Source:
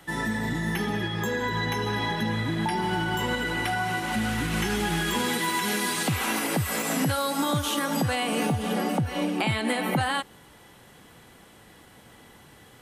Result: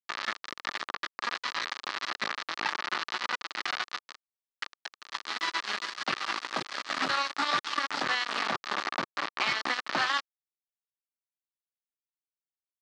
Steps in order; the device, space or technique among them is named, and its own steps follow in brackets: reverb removal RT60 0.85 s; hum notches 50/100/150/200/250/300 Hz; 4.12–5.27 s: elliptic high-pass 770 Hz, stop band 50 dB; hand-held game console (bit crusher 4-bit; cabinet simulation 400–5200 Hz, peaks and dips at 470 Hz -8 dB, 710 Hz -3 dB, 1.2 kHz +9 dB, 1.8 kHz +5 dB, 4.3 kHz +4 dB); trim -2.5 dB

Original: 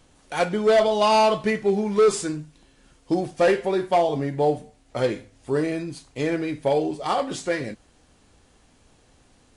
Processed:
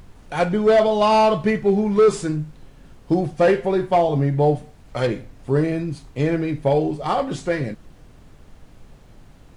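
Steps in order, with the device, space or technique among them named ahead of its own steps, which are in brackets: 4.55–5.07 s: tilt shelf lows -5 dB, about 830 Hz; car interior (peaking EQ 140 Hz +8.5 dB 0.8 oct; treble shelf 3.4 kHz -8 dB; brown noise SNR 23 dB); trim +2.5 dB

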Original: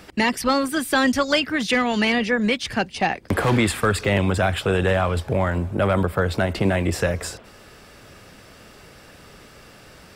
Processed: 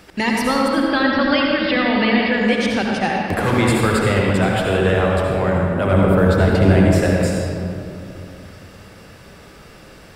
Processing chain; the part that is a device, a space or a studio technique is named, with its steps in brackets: 0.68–2.32 s: steep low-pass 5 kHz 96 dB/octave; 5.92–6.86 s: bass shelf 490 Hz +6.5 dB; stairwell (reverberation RT60 2.7 s, pre-delay 62 ms, DRR -2 dB); trim -1 dB

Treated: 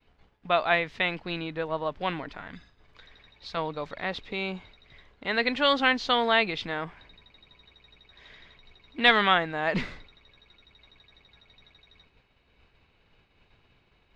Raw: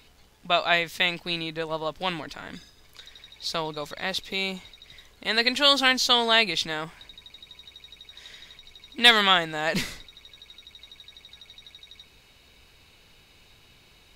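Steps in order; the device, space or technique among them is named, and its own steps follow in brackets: 2.40–3.57 s: dynamic bell 390 Hz, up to -7 dB, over -57 dBFS, Q 0.91; hearing-loss simulation (low-pass 2.3 kHz 12 dB/octave; expander -52 dBFS)

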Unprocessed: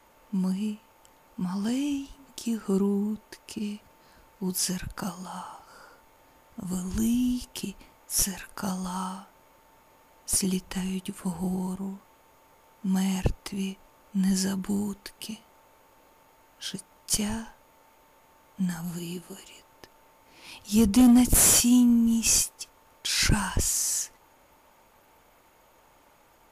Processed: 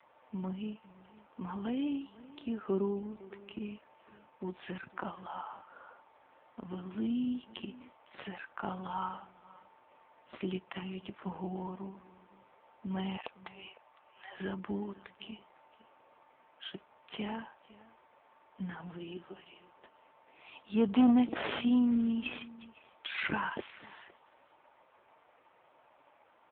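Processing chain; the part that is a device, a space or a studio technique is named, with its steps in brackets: 13.17–14.40 s: inverse Chebyshev high-pass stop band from 200 Hz, stop band 50 dB; satellite phone (band-pass 340–3200 Hz; delay 507 ms -20.5 dB; AMR-NB 5.9 kbps 8 kHz)

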